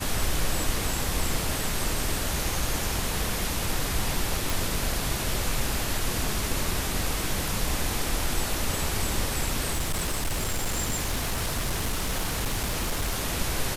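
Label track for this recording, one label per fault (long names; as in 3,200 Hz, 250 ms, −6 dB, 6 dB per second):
4.500000	4.500000	click
9.720000	13.220000	clipping −23 dBFS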